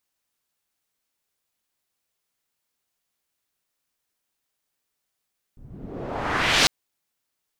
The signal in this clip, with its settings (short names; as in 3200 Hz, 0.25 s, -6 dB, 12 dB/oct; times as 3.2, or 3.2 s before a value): swept filtered noise white, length 1.10 s lowpass, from 100 Hz, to 5000 Hz, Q 1.2, exponential, gain ramp +11.5 dB